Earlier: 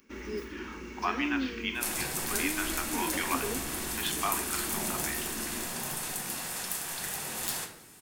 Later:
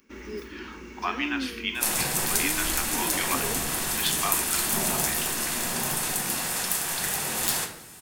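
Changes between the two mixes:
speech: remove air absorption 260 m; second sound +7.5 dB

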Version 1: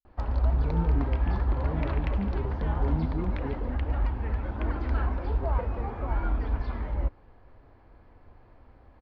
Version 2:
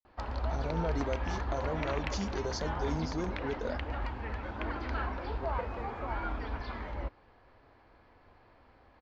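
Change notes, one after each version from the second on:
speech: remove running mean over 60 samples; master: add tilt +2.5 dB/oct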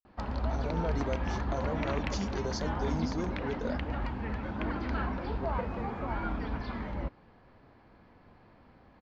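background: add bell 180 Hz +12.5 dB 1.1 oct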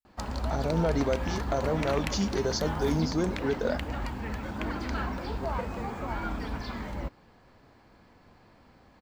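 speech +7.5 dB; background: remove air absorption 230 m

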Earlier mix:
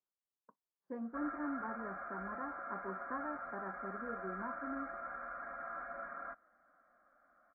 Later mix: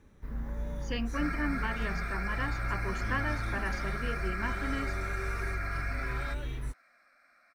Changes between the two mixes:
speech +6.0 dB; first sound: unmuted; master: remove inverse Chebyshev low-pass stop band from 2600 Hz, stop band 40 dB

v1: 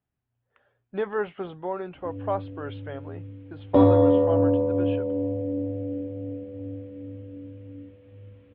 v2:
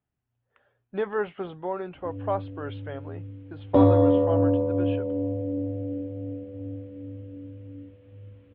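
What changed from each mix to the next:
background: send -6.0 dB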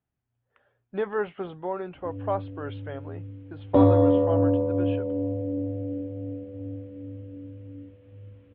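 master: add air absorption 59 m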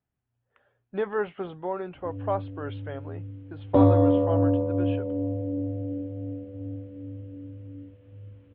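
reverb: off

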